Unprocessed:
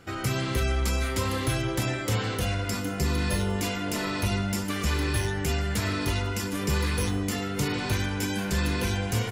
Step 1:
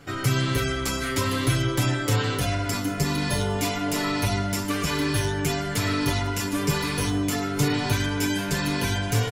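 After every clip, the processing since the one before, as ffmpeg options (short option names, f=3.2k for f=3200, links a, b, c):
-af "aecho=1:1:7:0.84,volume=1.5dB"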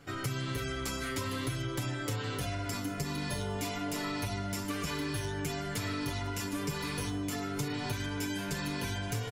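-af "acompressor=threshold=-24dB:ratio=6,volume=-7dB"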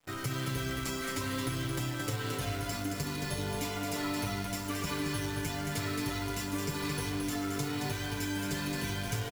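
-af "acrusher=bits=8:dc=4:mix=0:aa=0.000001,aecho=1:1:221:0.562,aeval=exprs='sgn(val(0))*max(abs(val(0))-0.00211,0)':c=same"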